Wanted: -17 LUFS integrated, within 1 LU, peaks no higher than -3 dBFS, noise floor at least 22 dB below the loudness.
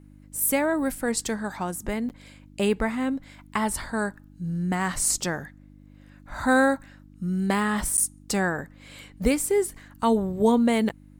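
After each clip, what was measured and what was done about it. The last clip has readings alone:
dropouts 3; longest dropout 9.2 ms; hum 50 Hz; highest harmonic 300 Hz; hum level -49 dBFS; loudness -25.5 LUFS; peak level -8.5 dBFS; loudness target -17.0 LUFS
-> interpolate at 2.09/7.97/10.89 s, 9.2 ms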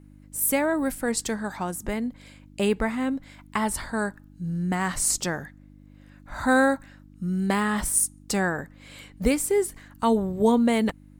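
dropouts 0; hum 50 Hz; highest harmonic 300 Hz; hum level -49 dBFS
-> de-hum 50 Hz, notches 6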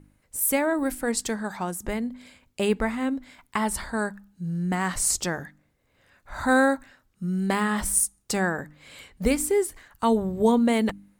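hum not found; loudness -25.5 LUFS; peak level -8.0 dBFS; loudness target -17.0 LUFS
-> trim +8.5 dB; peak limiter -3 dBFS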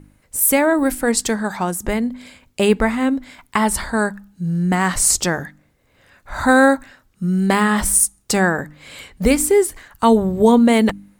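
loudness -17.5 LUFS; peak level -3.0 dBFS; noise floor -60 dBFS

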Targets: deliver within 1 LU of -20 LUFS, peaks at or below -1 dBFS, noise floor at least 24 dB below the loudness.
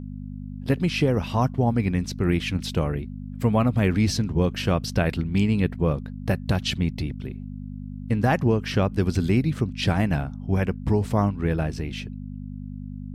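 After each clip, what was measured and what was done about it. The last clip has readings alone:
hum 50 Hz; highest harmonic 250 Hz; hum level -32 dBFS; loudness -24.5 LUFS; peak level -9.0 dBFS; loudness target -20.0 LUFS
-> de-hum 50 Hz, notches 5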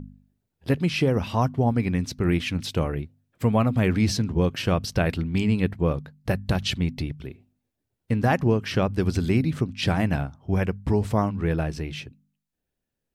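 hum not found; loudness -25.0 LUFS; peak level -10.0 dBFS; loudness target -20.0 LUFS
-> trim +5 dB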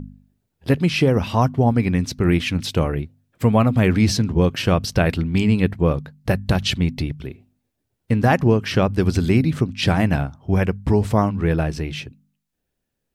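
loudness -20.0 LUFS; peak level -5.0 dBFS; noise floor -78 dBFS

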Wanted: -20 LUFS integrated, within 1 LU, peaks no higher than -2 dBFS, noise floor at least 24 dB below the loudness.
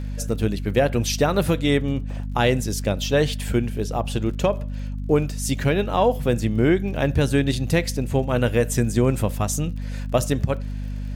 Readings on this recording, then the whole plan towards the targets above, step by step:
tick rate 35 per s; hum 50 Hz; highest harmonic 250 Hz; hum level -26 dBFS; loudness -22.5 LUFS; peak level -6.0 dBFS; loudness target -20.0 LUFS
-> de-click; hum notches 50/100/150/200/250 Hz; trim +2.5 dB

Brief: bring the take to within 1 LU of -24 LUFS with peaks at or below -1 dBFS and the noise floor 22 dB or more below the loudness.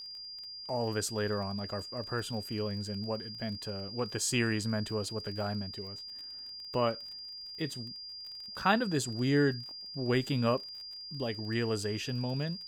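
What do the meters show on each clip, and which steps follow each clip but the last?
tick rate 29 per s; steady tone 4.8 kHz; tone level -42 dBFS; loudness -34.0 LUFS; peak level -13.5 dBFS; loudness target -24.0 LUFS
-> de-click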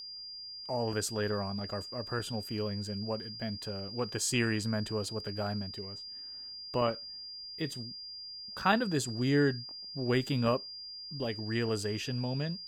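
tick rate 0.24 per s; steady tone 4.8 kHz; tone level -42 dBFS
-> band-stop 4.8 kHz, Q 30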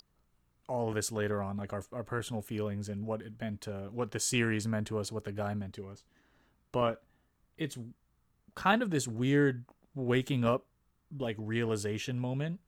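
steady tone not found; loudness -33.5 LUFS; peak level -13.5 dBFS; loudness target -24.0 LUFS
-> trim +9.5 dB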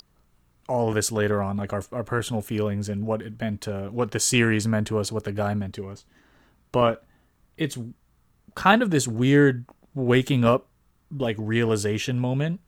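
loudness -24.0 LUFS; peak level -4.0 dBFS; noise floor -64 dBFS

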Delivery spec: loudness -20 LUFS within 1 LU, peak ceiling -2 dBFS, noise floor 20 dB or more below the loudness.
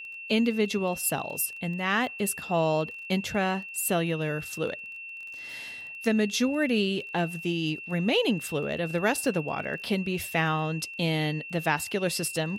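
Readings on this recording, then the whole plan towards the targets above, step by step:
tick rate 20 per s; steady tone 2.7 kHz; tone level -38 dBFS; loudness -28.0 LUFS; peak level -11.5 dBFS; loudness target -20.0 LUFS
-> de-click; band-stop 2.7 kHz, Q 30; trim +8 dB

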